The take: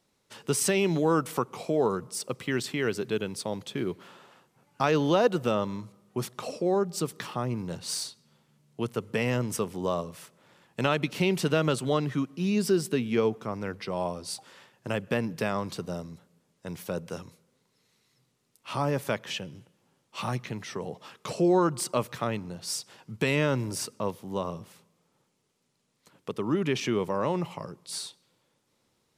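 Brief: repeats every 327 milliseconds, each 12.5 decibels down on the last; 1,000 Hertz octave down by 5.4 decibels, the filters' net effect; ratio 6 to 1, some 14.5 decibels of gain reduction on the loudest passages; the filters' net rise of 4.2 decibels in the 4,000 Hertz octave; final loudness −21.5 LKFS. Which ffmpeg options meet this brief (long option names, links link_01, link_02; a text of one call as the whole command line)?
ffmpeg -i in.wav -af "equalizer=frequency=1000:width_type=o:gain=-7.5,equalizer=frequency=4000:width_type=o:gain=6,acompressor=threshold=-36dB:ratio=6,aecho=1:1:327|654|981:0.237|0.0569|0.0137,volume=18.5dB" out.wav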